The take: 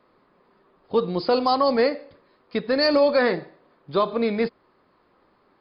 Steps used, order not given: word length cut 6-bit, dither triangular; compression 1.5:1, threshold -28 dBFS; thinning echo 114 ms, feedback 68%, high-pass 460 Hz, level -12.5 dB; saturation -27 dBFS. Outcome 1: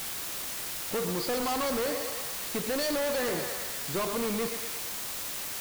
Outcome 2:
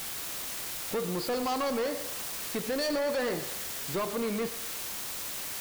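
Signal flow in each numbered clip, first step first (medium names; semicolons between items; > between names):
thinning echo > saturation > word length cut > compression; word length cut > compression > saturation > thinning echo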